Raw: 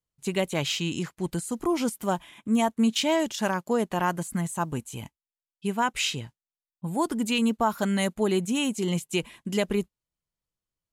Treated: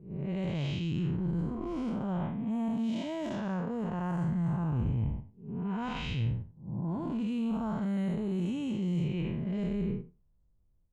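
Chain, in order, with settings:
spectrum smeared in time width 249 ms
low-pass that shuts in the quiet parts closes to 810 Hz, open at −24.5 dBFS
reversed playback
downward compressor 6 to 1, threshold −42 dBFS, peak gain reduction 16 dB
reversed playback
RIAA equalisation playback
in parallel at −2 dB: output level in coarse steps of 16 dB
on the sum: dynamic equaliser 340 Hz, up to −4 dB, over −53 dBFS, Q 1.2
level +5 dB

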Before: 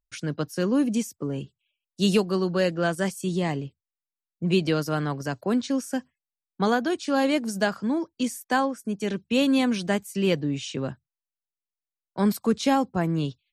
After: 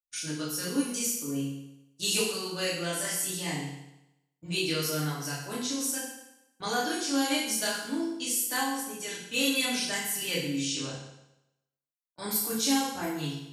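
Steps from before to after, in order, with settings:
first-order pre-emphasis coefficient 0.9
noise gate −54 dBFS, range −14 dB
multi-voice chorus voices 2, 0.23 Hz, delay 25 ms, depth 4.1 ms
feedback delay network reverb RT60 0.89 s, low-frequency decay 0.95×, high-frequency decay 0.95×, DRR −5.5 dB
level +6 dB

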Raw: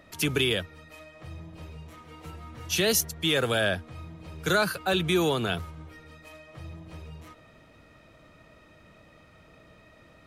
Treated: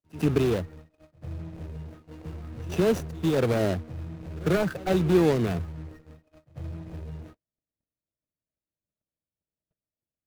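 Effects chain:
running median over 41 samples
noise gate −50 dBFS, range −46 dB
on a send: backwards echo 96 ms −20 dB
on the sum: level +5.5 dB

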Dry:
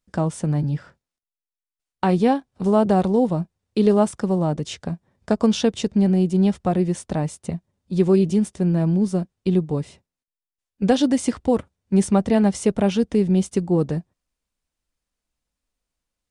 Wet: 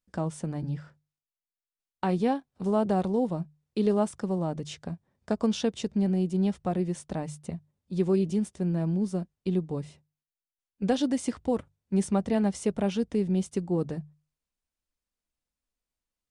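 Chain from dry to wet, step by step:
mains-hum notches 50/100/150 Hz
level −8 dB

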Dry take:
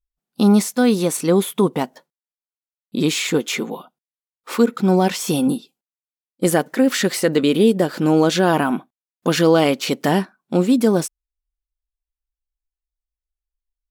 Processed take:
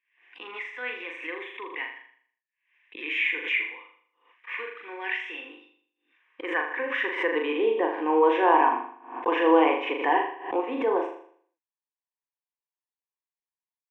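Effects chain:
high-pass filter sweep 1,900 Hz → 830 Hz, 0:05.38–0:07.76
loudspeaker in its box 280–2,400 Hz, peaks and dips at 310 Hz +10 dB, 530 Hz +6 dB, 800 Hz −10 dB, 1,400 Hz −4 dB, 2,100 Hz −4 dB
phaser with its sweep stopped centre 900 Hz, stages 8
on a send: flutter between parallel walls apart 6.9 metres, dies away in 0.57 s
on the sum: background raised ahead of every attack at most 110 dB per second

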